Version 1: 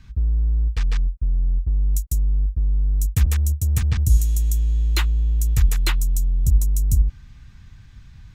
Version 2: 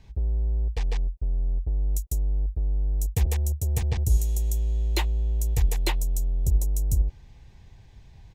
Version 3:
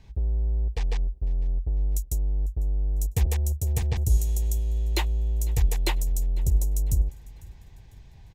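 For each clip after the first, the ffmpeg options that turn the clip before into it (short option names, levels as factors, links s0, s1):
-af "firequalizer=gain_entry='entry(260,0);entry(380,13);entry(850,11);entry(1300,-9);entry(1900,1)':delay=0.05:min_phase=1,volume=0.531"
-af "aecho=1:1:500|1000|1500:0.0708|0.029|0.0119"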